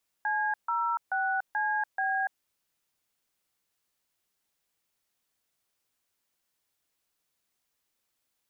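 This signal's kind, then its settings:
touch tones "C06CB", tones 289 ms, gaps 144 ms, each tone −28.5 dBFS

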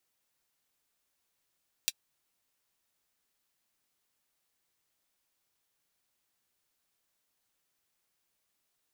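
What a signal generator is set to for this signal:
closed synth hi-hat, high-pass 3,200 Hz, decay 0.05 s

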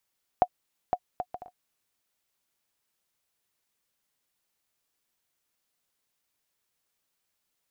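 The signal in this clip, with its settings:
bouncing ball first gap 0.51 s, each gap 0.53, 726 Hz, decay 59 ms −9 dBFS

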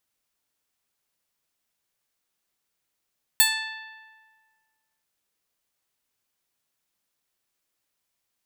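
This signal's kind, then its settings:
Karplus-Strong string A5, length 1.63 s, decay 1.69 s, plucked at 0.15, bright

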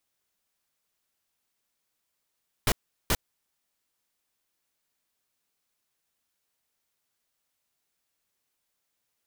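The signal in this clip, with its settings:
noise bursts pink, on 0.05 s, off 0.38 s, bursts 2, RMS −23 dBFS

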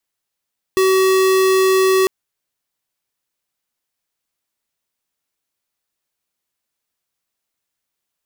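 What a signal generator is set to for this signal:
tone square 379 Hz −13.5 dBFS 1.30 s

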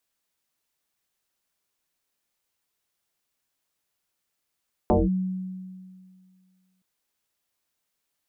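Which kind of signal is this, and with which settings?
two-operator FM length 1.92 s, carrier 186 Hz, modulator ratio 0.74, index 5.1, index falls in 0.19 s linear, decay 2.09 s, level −15 dB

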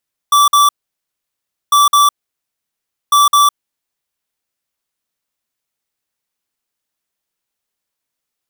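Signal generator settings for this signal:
beeps in groups square 1,160 Hz, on 0.16 s, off 0.05 s, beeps 2, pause 1.03 s, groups 3, −9 dBFS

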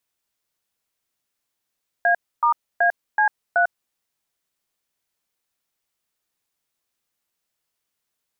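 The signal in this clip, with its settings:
touch tones "A*AC3", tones 98 ms, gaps 279 ms, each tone −17 dBFS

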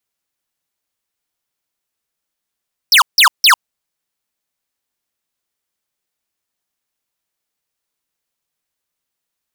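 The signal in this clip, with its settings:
repeated falling chirps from 5,800 Hz, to 880 Hz, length 0.10 s square, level −7.5 dB, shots 3, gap 0.16 s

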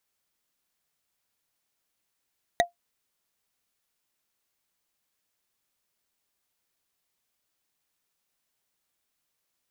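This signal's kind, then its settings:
struck wood, lowest mode 696 Hz, decay 0.13 s, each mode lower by 2 dB, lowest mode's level −14 dB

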